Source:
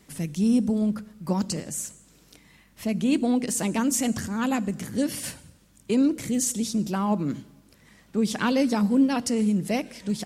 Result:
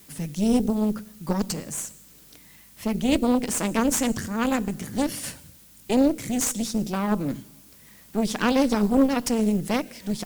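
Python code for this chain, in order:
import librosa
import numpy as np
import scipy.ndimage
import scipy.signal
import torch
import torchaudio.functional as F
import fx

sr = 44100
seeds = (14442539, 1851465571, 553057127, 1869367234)

y = fx.dmg_noise_colour(x, sr, seeds[0], colour='blue', level_db=-52.0)
y = fx.cheby_harmonics(y, sr, harmonics=(4, 6, 8), levels_db=(-8, -18, -31), full_scale_db=-11.5)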